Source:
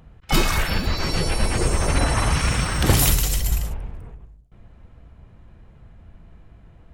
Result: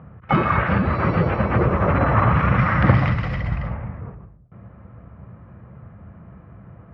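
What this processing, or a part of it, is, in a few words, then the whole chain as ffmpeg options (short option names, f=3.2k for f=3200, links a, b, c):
bass amplifier: -filter_complex "[0:a]asettb=1/sr,asplit=3[a][b][c];[a]atrim=end=2.584[d];[b]atrim=start=2.58:end=4.01,asetpts=PTS-STARTPTS,afade=t=in:d=0.004:c=qsin,afade=t=out:st=1.426:d=0.004:c=qsin,equalizer=f=400:t=o:w=0.33:g=-9,equalizer=f=2k:t=o:w=0.33:g=7,equalizer=f=5k:t=o:w=0.33:g=11[e];[c]atrim=start=4.006[f];[d][e]acrossfade=d=0.004:c1=hsin:c2=qsin[g];[g][f]acrossfade=d=0.004:c1=qsin:c2=hsin,acompressor=threshold=-19dB:ratio=3,highpass=f=68:w=0.5412,highpass=f=68:w=1.3066,equalizer=f=120:t=q:w=4:g=7,equalizer=f=190:t=q:w=4:g=7,equalizer=f=560:t=q:w=4:g=5,equalizer=f=1.2k:t=q:w=4:g=8,lowpass=f=2.1k:w=0.5412,lowpass=f=2.1k:w=1.3066,volume=5dB"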